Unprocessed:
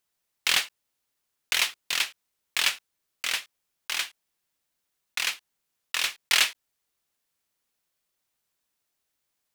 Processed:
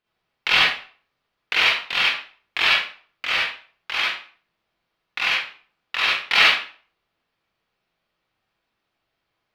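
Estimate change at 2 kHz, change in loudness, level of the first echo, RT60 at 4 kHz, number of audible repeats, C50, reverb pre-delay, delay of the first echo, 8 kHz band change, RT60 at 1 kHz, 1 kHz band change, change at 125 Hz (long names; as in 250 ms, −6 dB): +9.5 dB, +7.0 dB, no echo audible, 0.35 s, no echo audible, −2.0 dB, 38 ms, no echo audible, −10.0 dB, 0.45 s, +11.0 dB, can't be measured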